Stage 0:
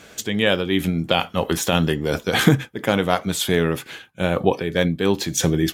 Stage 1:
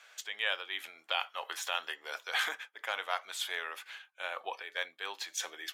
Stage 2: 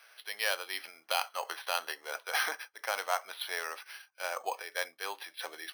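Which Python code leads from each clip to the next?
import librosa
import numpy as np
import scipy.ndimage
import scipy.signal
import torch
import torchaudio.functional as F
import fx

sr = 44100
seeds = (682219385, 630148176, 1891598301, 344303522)

y1 = scipy.signal.sosfilt(scipy.signal.bessel(4, 1200.0, 'highpass', norm='mag', fs=sr, output='sos'), x)
y1 = fx.high_shelf(y1, sr, hz=4600.0, db=-11.5)
y1 = F.gain(torch.from_numpy(y1), -6.5).numpy()
y2 = np.repeat(scipy.signal.resample_poly(y1, 1, 6), 6)[:len(y1)]
y2 = fx.dynamic_eq(y2, sr, hz=640.0, q=0.73, threshold_db=-50.0, ratio=4.0, max_db=5)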